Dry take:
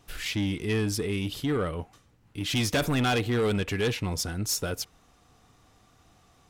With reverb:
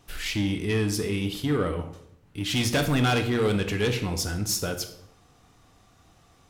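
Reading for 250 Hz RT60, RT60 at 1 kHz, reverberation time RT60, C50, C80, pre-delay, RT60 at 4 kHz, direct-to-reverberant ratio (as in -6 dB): 0.90 s, 0.65 s, 0.70 s, 10.0 dB, 13.0 dB, 15 ms, 0.50 s, 6.5 dB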